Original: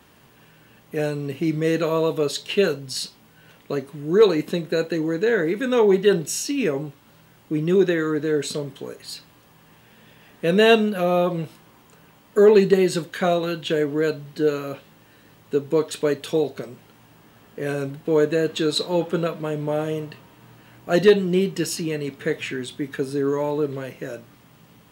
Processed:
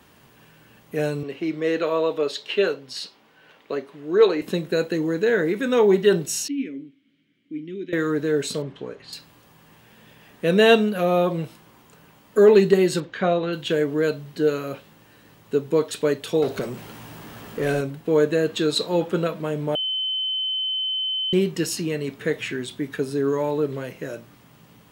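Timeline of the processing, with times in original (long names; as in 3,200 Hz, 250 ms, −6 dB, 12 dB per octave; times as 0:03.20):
0:01.23–0:04.42: three-way crossover with the lows and the highs turned down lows −16 dB, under 270 Hz, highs −14 dB, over 4,900 Hz
0:06.48–0:07.93: formant filter i
0:08.62–0:09.13: low-pass filter 3,400 Hz
0:13.00–0:13.53: high-frequency loss of the air 180 metres
0:16.42–0:17.81: power curve on the samples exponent 0.7
0:19.75–0:21.33: beep over 3,060 Hz −22.5 dBFS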